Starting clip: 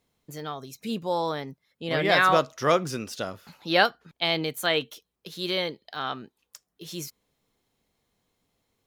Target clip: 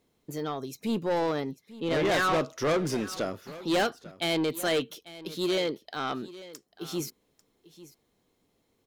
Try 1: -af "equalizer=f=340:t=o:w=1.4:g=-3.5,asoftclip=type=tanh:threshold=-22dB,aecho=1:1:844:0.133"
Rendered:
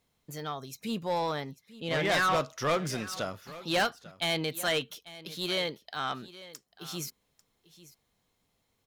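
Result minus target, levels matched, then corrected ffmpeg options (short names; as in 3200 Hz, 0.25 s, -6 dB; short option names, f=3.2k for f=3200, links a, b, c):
250 Hz band -4.5 dB
-af "equalizer=f=340:t=o:w=1.4:g=7.5,asoftclip=type=tanh:threshold=-22dB,aecho=1:1:844:0.133"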